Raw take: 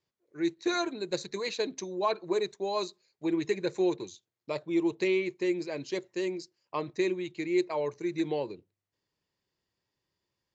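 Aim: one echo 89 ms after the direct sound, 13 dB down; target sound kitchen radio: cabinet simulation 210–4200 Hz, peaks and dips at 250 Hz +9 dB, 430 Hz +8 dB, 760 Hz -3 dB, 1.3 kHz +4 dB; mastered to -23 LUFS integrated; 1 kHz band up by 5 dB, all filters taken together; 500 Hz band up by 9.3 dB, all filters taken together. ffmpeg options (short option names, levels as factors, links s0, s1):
-af "highpass=210,equalizer=f=250:t=q:w=4:g=9,equalizer=f=430:t=q:w=4:g=8,equalizer=f=760:t=q:w=4:g=-3,equalizer=f=1300:t=q:w=4:g=4,lowpass=f=4200:w=0.5412,lowpass=f=4200:w=1.3066,equalizer=f=500:t=o:g=6,equalizer=f=1000:t=o:g=4,aecho=1:1:89:0.224,volume=1.12"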